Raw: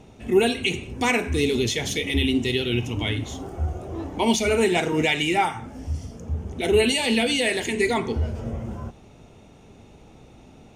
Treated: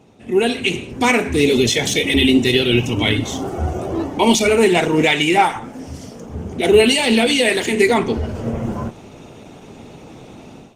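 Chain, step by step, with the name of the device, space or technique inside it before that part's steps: 4.98–6.34 HPF 76 Hz -> 310 Hz 6 dB/oct; video call (HPF 120 Hz 12 dB/oct; AGC gain up to 13 dB; Opus 16 kbps 48000 Hz)

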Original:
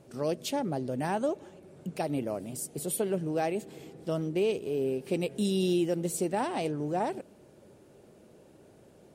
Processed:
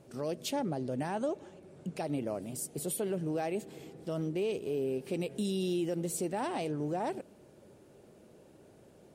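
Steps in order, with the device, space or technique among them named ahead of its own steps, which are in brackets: clipper into limiter (hard clip -19.5 dBFS, distortion -43 dB; limiter -23.5 dBFS, peak gain reduction 4 dB); 0.55–2.42 LPF 11000 Hz 12 dB/oct; gain -1.5 dB

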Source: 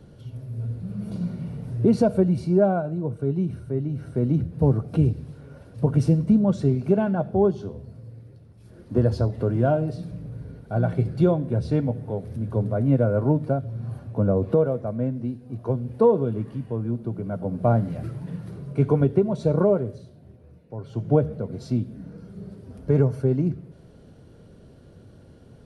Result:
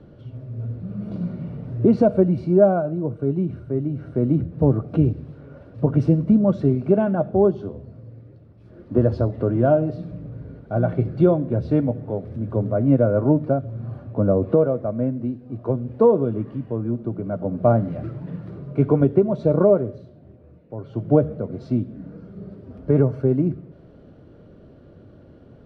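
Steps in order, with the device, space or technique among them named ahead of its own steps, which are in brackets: inside a cardboard box (LPF 3100 Hz 12 dB/oct; small resonant body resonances 310/590/1200 Hz, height 6 dB, ringing for 20 ms)

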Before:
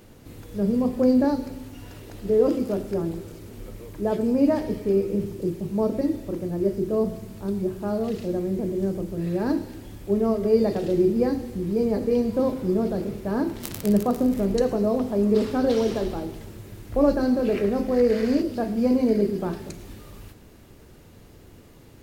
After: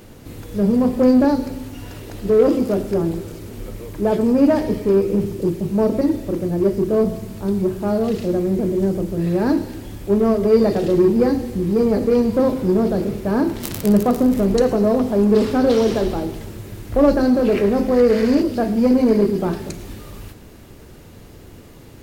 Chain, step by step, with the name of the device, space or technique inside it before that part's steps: parallel distortion (in parallel at -5.5 dB: hard clip -22.5 dBFS, distortion -8 dB); on the sum: gain +3.5 dB

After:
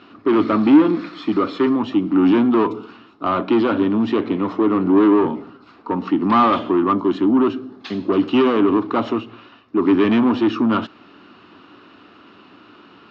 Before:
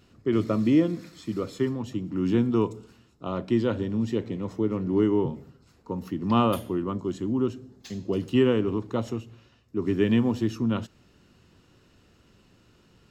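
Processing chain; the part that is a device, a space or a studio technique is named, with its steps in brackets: overdrive pedal into a guitar cabinet (overdrive pedal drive 25 dB, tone 1900 Hz, clips at -9 dBFS; speaker cabinet 110–4200 Hz, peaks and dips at 140 Hz -9 dB, 290 Hz +8 dB, 510 Hz -7 dB, 1200 Hz +6 dB, 1900 Hz -4 dB); gain +1 dB

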